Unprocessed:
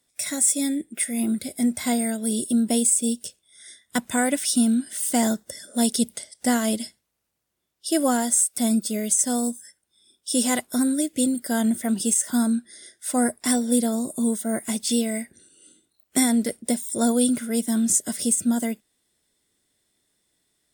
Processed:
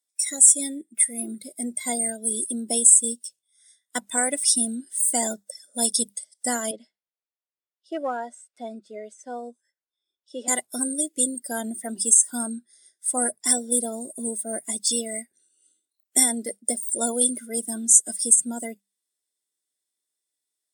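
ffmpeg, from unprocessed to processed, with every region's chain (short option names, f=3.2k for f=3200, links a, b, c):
-filter_complex "[0:a]asettb=1/sr,asplit=3[a][b][c];[a]atrim=end=6.714[d];[b]atrim=start=6.71:end=10.48,asetpts=PTS-STARTPTS,afade=t=in:d=0.004:c=qsin,afade=t=out:st=3.766:d=0.004:c=qsin,highpass=350,lowpass=2.5k,volume=18.5dB,asoftclip=hard,volume=-18.5dB[e];[c]atrim=start=10.476[f];[d][e]acrossfade=d=0.004:c1=hsin:c2=qsin[g];[g][f]acrossfade=d=0.004:c1=qsin:c2=hsin,bandreject=f=50:t=h:w=6,bandreject=f=100:t=h:w=6,bandreject=f=150:t=h:w=6,bandreject=f=200:t=h:w=6,afftdn=nr=17:nf=-30,bass=f=250:g=-15,treble=f=4k:g=9,volume=-2dB"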